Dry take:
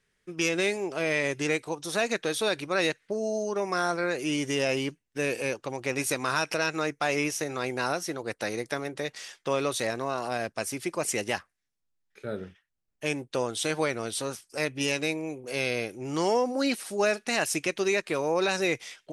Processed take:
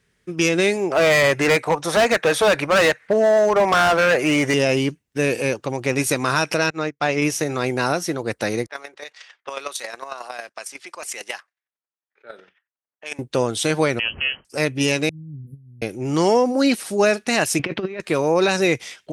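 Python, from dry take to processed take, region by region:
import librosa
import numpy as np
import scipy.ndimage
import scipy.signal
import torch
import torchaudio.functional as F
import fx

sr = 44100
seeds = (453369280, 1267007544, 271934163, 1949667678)

y = fx.chain(x, sr, fx.band_shelf(hz=1100.0, db=11.0, octaves=2.5),
    fx.clip_hard(threshold_db=-20.0), at=(0.9, 4.54))
y = fx.chain(y, sr, fx.lowpass(hz=5600.0, slope=12),
    fx.upward_expand(threshold_db=-40.0, expansion=2.5), at=(6.7, 7.22))
y = fx.chain(y, sr, fx.env_lowpass(base_hz=1300.0, full_db=-26.5),
    fx.highpass(hz=830.0, slope=12),
    fx.chopper(hz=11.0, depth_pct=60, duty_pct=15), at=(8.66, 13.19))
y = fx.chain(y, sr, fx.low_shelf(hz=440.0, db=6.0),
    fx.freq_invert(carrier_hz=3100), at=(13.99, 14.45))
y = fx.chain(y, sr, fx.cheby2_bandstop(low_hz=690.0, high_hz=6700.0, order=4, stop_db=70),
    fx.over_compress(threshold_db=-49.0, ratio=-0.5), at=(15.09, 15.82))
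y = fx.chain(y, sr, fx.over_compress(threshold_db=-33.0, ratio=-0.5),
    fx.leveller(passes=1),
    fx.air_absorb(metres=370.0), at=(17.59, 18.0))
y = scipy.signal.sosfilt(scipy.signal.butter(2, 48.0, 'highpass', fs=sr, output='sos'), y)
y = fx.low_shelf(y, sr, hz=280.0, db=7.0)
y = F.gain(torch.from_numpy(y), 6.5).numpy()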